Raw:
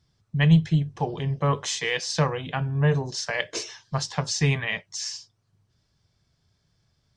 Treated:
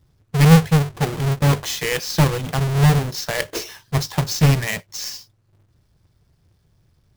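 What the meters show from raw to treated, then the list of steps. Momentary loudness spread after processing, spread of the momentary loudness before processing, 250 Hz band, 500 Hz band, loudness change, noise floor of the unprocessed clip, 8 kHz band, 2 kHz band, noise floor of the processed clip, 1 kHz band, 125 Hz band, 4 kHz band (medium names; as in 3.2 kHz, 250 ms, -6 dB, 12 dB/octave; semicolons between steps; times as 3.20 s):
14 LU, 12 LU, +6.5 dB, +5.0 dB, +6.0 dB, -71 dBFS, +4.0 dB, +3.5 dB, -62 dBFS, +5.5 dB, +7.0 dB, +4.0 dB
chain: square wave that keeps the level; bass shelf 140 Hz +6.5 dB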